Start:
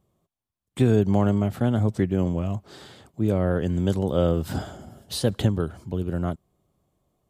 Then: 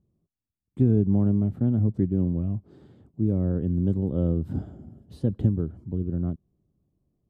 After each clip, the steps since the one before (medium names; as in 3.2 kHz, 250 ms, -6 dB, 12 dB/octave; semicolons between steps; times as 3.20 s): FFT filter 290 Hz 0 dB, 650 Hz -14 dB, 5.5 kHz -28 dB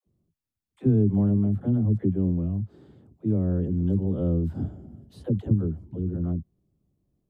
phase dispersion lows, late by 73 ms, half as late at 420 Hz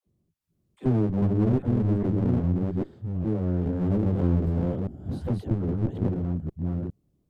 chunks repeated in reverse 406 ms, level -0.5 dB; one-sided clip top -28.5 dBFS, bottom -11.5 dBFS